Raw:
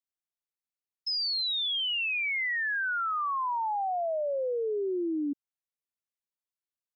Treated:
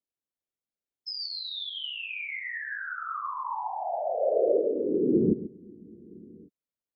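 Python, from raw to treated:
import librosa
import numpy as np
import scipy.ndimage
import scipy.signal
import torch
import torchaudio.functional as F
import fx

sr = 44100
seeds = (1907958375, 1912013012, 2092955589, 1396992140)

p1 = fx.low_shelf(x, sr, hz=170.0, db=10.5)
p2 = fx.small_body(p1, sr, hz=(290.0, 500.0), ring_ms=25, db=13)
p3 = fx.whisperise(p2, sr, seeds[0])
p4 = p3 + fx.echo_feedback(p3, sr, ms=136, feedback_pct=24, wet_db=-13.5, dry=0)
p5 = fx.spec_freeze(p4, sr, seeds[1], at_s=5.59, hold_s=0.88)
y = p5 * librosa.db_to_amplitude(-6.5)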